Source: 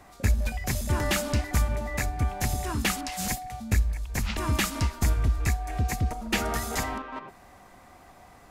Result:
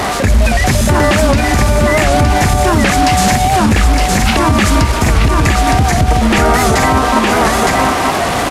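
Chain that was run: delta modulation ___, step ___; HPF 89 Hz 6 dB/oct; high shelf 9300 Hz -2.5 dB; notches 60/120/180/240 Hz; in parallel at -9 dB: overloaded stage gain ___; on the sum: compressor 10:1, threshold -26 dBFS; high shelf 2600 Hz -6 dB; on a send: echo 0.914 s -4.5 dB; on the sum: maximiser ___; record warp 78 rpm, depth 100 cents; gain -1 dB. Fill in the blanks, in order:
64 kbps, -34 dBFS, 22.5 dB, +24.5 dB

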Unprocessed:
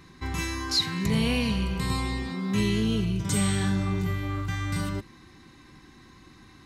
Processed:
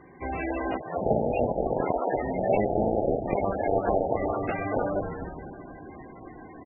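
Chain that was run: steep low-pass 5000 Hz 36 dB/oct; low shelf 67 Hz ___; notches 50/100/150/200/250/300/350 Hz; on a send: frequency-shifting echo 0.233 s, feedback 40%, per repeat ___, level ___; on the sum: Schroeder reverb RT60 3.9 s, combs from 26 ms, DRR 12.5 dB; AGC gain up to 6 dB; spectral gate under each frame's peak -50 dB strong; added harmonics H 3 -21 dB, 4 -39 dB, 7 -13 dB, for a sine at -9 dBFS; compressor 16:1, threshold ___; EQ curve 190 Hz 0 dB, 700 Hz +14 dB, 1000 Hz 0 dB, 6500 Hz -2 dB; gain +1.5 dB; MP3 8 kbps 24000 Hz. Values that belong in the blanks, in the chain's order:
-9 dB, -120 Hz, -10.5 dB, -25 dBFS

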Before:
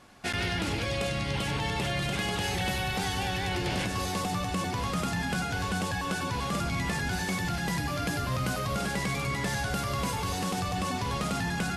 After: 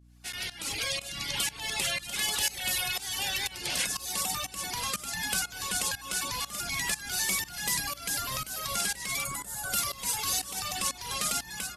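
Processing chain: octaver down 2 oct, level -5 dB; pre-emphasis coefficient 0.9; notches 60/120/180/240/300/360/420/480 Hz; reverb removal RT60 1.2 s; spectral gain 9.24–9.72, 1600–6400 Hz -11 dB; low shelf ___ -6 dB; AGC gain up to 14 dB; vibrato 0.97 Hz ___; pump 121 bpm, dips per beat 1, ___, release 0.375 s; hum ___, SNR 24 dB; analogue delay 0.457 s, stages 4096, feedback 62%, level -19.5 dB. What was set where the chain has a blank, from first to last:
210 Hz, 39 cents, -20 dB, 60 Hz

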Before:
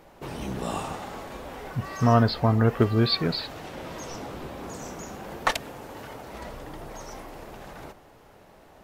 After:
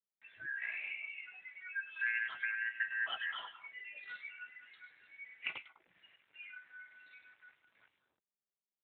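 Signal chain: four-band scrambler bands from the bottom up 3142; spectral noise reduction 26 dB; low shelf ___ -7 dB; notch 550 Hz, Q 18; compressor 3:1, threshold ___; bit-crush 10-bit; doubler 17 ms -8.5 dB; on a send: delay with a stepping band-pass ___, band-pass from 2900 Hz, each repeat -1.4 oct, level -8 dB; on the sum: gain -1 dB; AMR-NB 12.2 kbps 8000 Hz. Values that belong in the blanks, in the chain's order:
450 Hz, -39 dBFS, 0.101 s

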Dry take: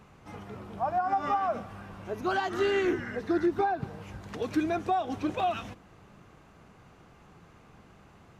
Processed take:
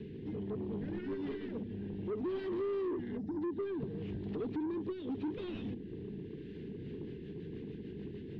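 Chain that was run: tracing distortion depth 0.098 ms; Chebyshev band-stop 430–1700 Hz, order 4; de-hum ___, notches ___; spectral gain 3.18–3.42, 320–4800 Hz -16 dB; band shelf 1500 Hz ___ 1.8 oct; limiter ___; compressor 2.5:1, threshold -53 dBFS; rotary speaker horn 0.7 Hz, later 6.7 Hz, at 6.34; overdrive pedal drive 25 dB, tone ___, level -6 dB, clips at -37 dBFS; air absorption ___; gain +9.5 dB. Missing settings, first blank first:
58.36 Hz, 4, -15 dB, -22 dBFS, 1400 Hz, 470 m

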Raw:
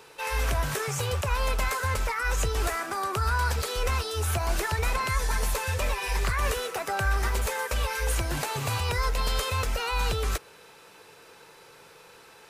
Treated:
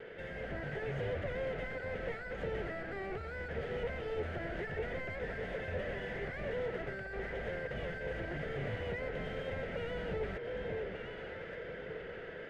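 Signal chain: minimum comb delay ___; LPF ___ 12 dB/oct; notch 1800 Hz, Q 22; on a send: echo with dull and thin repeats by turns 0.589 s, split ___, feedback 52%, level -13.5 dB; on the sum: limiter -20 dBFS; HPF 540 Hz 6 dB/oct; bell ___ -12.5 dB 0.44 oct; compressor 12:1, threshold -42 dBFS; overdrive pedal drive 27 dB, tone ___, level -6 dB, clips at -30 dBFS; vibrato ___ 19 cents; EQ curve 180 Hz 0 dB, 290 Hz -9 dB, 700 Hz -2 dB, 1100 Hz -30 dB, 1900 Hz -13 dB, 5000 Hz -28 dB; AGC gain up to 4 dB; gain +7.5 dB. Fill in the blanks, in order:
0.62 ms, 2500 Hz, 810 Hz, 730 Hz, 1900 Hz, 0.97 Hz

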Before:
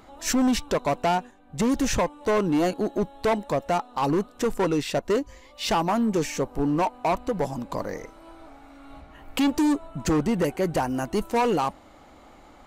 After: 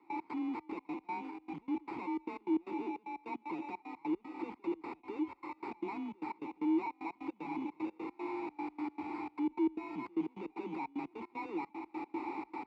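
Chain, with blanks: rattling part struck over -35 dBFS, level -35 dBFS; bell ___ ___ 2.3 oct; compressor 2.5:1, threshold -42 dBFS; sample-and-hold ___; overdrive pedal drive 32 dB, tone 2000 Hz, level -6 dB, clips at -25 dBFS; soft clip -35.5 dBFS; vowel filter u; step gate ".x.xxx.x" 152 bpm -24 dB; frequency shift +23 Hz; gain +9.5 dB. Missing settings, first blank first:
70 Hz, +6.5 dB, 14×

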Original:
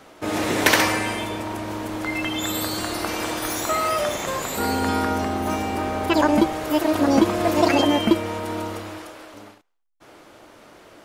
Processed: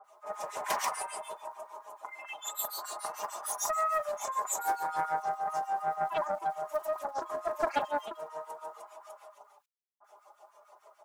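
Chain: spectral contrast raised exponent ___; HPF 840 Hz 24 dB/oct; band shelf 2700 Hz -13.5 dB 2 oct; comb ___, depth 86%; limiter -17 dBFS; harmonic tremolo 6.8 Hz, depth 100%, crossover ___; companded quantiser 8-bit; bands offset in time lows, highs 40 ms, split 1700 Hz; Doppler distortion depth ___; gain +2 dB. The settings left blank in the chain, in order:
1.6, 4.9 ms, 1400 Hz, 0.28 ms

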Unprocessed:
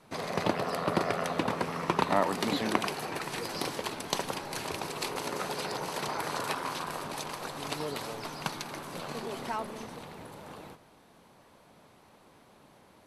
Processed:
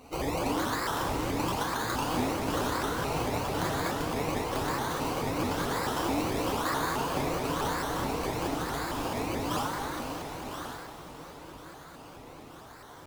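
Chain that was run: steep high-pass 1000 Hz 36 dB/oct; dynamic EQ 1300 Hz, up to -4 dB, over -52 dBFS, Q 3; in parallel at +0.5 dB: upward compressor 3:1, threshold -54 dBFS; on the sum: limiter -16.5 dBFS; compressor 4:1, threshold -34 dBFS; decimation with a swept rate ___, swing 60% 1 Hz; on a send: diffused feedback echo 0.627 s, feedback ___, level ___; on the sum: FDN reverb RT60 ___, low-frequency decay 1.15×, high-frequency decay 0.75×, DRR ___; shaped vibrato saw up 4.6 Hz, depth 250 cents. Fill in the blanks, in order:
22×, 49%, -11 dB, 1.4 s, -5.5 dB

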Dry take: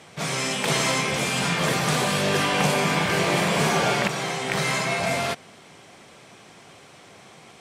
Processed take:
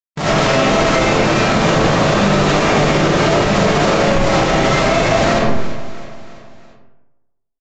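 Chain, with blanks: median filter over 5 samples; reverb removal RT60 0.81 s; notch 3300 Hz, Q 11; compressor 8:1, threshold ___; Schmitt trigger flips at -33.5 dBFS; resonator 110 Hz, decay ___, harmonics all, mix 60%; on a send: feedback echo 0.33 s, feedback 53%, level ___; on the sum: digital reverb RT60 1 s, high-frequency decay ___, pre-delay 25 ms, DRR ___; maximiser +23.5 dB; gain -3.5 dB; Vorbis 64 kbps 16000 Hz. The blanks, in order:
-29 dBFS, 0.41 s, -18 dB, 0.5×, -9.5 dB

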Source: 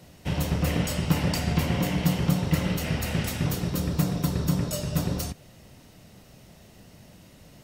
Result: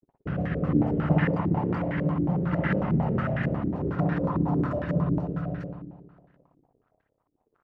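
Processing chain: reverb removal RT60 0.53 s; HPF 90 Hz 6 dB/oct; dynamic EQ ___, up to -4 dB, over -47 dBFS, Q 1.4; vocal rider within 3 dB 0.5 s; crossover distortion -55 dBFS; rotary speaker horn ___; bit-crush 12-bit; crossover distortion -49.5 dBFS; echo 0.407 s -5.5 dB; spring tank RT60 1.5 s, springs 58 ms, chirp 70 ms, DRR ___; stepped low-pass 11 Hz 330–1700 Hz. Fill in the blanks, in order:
460 Hz, 0.65 Hz, -2 dB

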